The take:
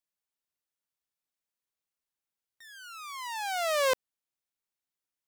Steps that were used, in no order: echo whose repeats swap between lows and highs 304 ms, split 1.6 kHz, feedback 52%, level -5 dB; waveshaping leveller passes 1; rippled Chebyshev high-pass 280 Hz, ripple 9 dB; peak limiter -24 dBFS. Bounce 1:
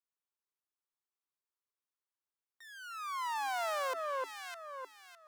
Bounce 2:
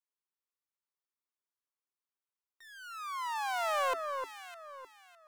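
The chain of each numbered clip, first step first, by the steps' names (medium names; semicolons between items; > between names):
echo whose repeats swap between lows and highs > peak limiter > waveshaping leveller > rippled Chebyshev high-pass; rippled Chebyshev high-pass > peak limiter > waveshaping leveller > echo whose repeats swap between lows and highs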